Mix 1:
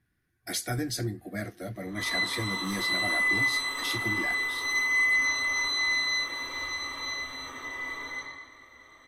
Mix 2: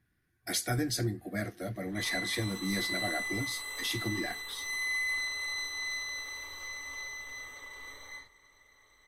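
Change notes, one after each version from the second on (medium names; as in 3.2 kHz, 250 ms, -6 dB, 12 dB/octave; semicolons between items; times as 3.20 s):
reverb: off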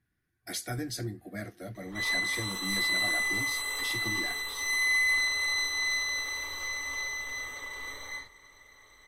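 speech -4.0 dB; background +6.5 dB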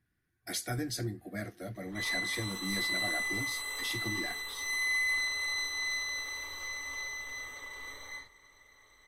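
background -4.5 dB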